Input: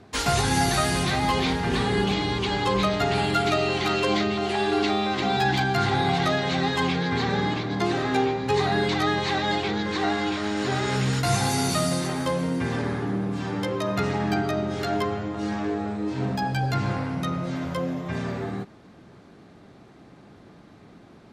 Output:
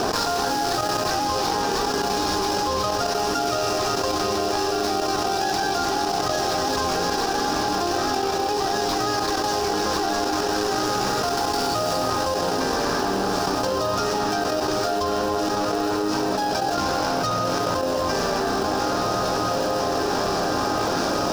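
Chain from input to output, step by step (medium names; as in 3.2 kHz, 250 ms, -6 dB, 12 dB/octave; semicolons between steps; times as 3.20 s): median filter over 15 samples; high-pass 590 Hz 12 dB/octave; peaking EQ 5.3 kHz +13 dB 0.49 oct; on a send at -8.5 dB: reverberation RT60 2.2 s, pre-delay 95 ms; on the sum: trance gate "xxxxxxxxxx.x." 186 bpm -12 dB; band-stop 2.1 kHz, Q 14; echo that smears into a reverb 1939 ms, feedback 49%, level -13.5 dB; in parallel at -9 dB: sample-and-hold 39×; on the sum: peaking EQ 2 kHz -7.5 dB 0.72 oct; level flattener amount 100%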